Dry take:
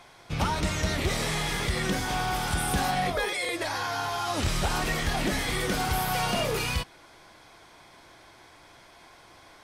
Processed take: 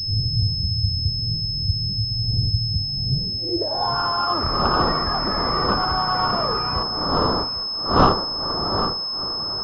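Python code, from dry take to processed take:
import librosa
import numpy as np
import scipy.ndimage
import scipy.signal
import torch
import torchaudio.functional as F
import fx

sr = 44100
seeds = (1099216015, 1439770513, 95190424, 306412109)

p1 = fx.dmg_wind(x, sr, seeds[0], corner_hz=540.0, level_db=-29.0)
p2 = fx.filter_sweep_lowpass(p1, sr, from_hz=110.0, to_hz=1200.0, start_s=3.07, end_s=3.98, q=6.0)
p3 = p2 + fx.echo_single(p2, sr, ms=803, db=-13.0, dry=0)
y = fx.pwm(p3, sr, carrier_hz=5200.0)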